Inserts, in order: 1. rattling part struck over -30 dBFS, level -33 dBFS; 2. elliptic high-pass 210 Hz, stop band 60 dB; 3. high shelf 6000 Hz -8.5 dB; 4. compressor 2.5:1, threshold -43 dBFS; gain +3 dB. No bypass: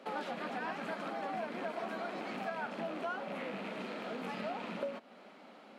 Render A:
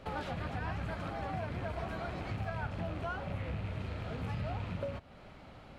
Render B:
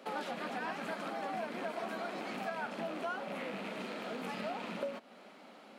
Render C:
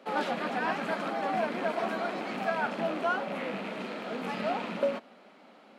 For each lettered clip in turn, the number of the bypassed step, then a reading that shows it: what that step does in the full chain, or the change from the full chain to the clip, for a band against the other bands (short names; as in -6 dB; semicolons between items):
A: 2, 125 Hz band +18.5 dB; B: 3, 8 kHz band +5.0 dB; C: 4, mean gain reduction 6.0 dB